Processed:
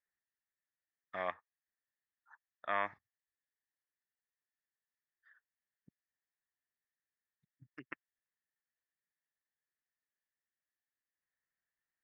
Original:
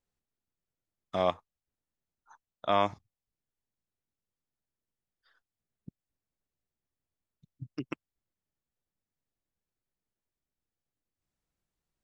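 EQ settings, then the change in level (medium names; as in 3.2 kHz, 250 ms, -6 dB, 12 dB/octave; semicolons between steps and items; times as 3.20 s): band-pass filter 1.8 kHz, Q 9; tilt EQ -3.5 dB/octave; +12.5 dB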